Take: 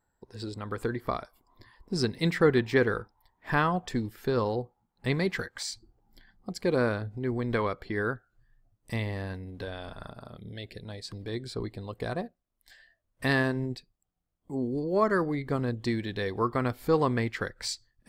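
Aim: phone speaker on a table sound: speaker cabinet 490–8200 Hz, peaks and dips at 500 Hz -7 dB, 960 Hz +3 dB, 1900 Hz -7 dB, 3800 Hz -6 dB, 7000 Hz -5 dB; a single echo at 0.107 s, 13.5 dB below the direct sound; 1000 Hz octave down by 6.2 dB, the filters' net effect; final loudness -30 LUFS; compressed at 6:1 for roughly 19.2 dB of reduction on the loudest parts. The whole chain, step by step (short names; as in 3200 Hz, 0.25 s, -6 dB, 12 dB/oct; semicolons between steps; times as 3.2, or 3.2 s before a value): bell 1000 Hz -8.5 dB; compressor 6:1, threshold -41 dBFS; speaker cabinet 490–8200 Hz, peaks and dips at 500 Hz -7 dB, 960 Hz +3 dB, 1900 Hz -7 dB, 3800 Hz -6 dB, 7000 Hz -5 dB; echo 0.107 s -13.5 dB; gain +23 dB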